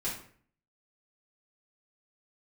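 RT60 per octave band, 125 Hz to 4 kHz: 0.70, 0.65, 0.55, 0.50, 0.50, 0.40 s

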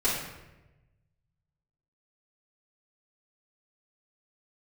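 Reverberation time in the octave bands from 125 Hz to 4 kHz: 1.9, 1.2, 1.1, 0.90, 0.95, 0.70 s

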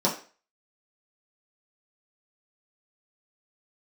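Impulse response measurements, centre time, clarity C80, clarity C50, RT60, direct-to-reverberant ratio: 22 ms, 14.0 dB, 9.5 dB, 0.40 s, -6.0 dB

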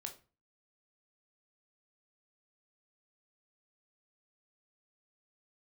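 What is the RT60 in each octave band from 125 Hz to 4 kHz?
0.50, 0.45, 0.35, 0.35, 0.30, 0.25 s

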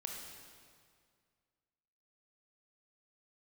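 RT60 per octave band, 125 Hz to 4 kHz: 2.3, 2.2, 2.1, 2.0, 1.8, 1.7 s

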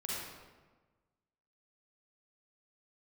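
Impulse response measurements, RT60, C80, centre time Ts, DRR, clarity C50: 1.3 s, 0.0 dB, 0.104 s, -6.5 dB, -4.0 dB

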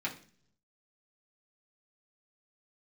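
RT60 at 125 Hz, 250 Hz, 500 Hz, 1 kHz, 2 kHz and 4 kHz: 1.0, 0.80, 0.55, 0.40, 0.45, 0.50 s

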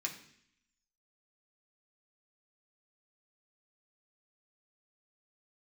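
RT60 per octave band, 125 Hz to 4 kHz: 0.80, 0.85, 0.65, 0.65, 0.80, 0.80 s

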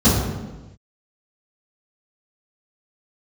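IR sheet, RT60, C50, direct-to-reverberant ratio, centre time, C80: not exponential, 0.5 dB, -16.0 dB, 78 ms, 3.0 dB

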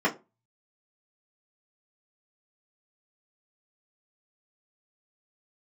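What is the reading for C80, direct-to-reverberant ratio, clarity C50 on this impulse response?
23.0 dB, -6.5 dB, 16.5 dB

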